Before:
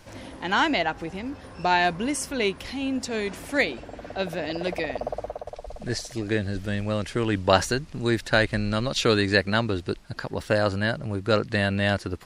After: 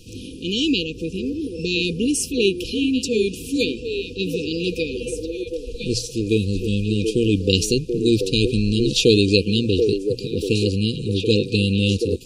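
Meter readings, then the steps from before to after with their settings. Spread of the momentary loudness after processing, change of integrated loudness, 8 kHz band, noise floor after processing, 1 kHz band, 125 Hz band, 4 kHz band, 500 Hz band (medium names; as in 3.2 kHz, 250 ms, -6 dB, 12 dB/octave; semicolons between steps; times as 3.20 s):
9 LU, +4.5 dB, +7.0 dB, -36 dBFS, under -40 dB, +6.5 dB, +7.5 dB, +5.0 dB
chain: hum notches 60/120 Hz; FFT band-reject 510–2400 Hz; repeats whose band climbs or falls 733 ms, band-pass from 440 Hz, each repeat 1.4 oct, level -3 dB; trim +7 dB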